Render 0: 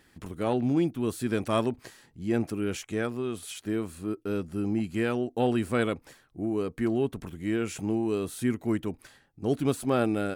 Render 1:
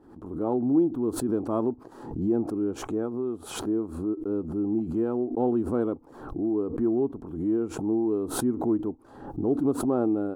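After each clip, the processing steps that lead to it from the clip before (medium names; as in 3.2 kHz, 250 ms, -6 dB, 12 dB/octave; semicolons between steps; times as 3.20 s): FFT filter 170 Hz 0 dB, 310 Hz +11 dB, 600 Hz +2 dB, 870 Hz +6 dB, 1.3 kHz -2 dB, 2 kHz -23 dB, 3.9 kHz -20 dB; swell ahead of each attack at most 74 dB/s; trim -6 dB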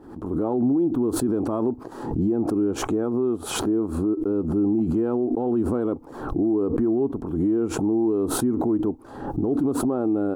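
peak limiter -24.5 dBFS, peak gain reduction 11.5 dB; trim +9 dB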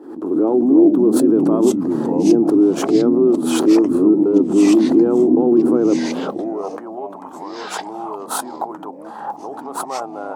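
ever faster or slower copies 205 ms, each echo -4 st, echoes 3; high-pass sweep 320 Hz -> 850 Hz, 5.97–6.80 s; trim +3 dB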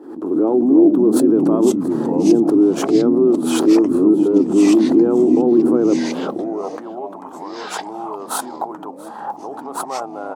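delay 680 ms -21.5 dB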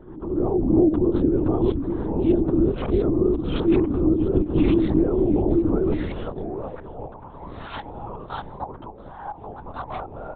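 LPC vocoder at 8 kHz whisper; trim -6.5 dB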